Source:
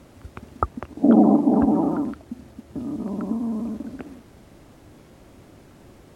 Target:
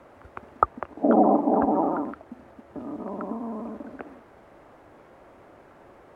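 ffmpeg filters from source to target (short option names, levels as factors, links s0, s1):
-filter_complex "[0:a]acrossover=split=440 2000:gain=0.158 1 0.112[s0][s1][s2];[s0][s1][s2]amix=inputs=3:normalize=0,volume=1.78"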